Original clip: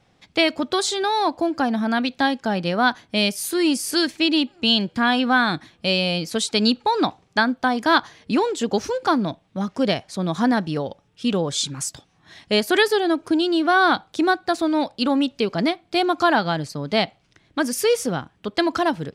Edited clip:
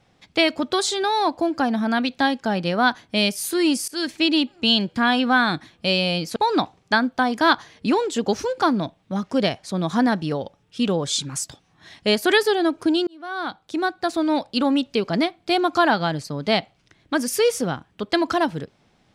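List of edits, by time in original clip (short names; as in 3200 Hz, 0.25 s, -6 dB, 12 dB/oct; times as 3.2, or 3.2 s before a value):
3.88–4.14 fade in, from -22.5 dB
6.36–6.81 cut
13.52–14.76 fade in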